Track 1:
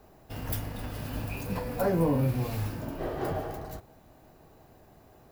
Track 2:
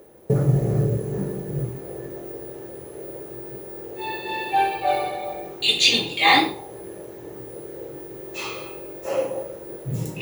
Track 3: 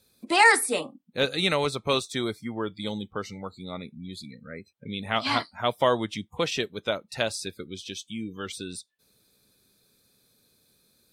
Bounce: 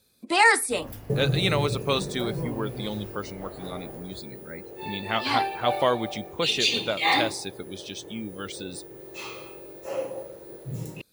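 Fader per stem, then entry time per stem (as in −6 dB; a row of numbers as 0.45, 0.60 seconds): −9.0, −6.5, −0.5 decibels; 0.40, 0.80, 0.00 seconds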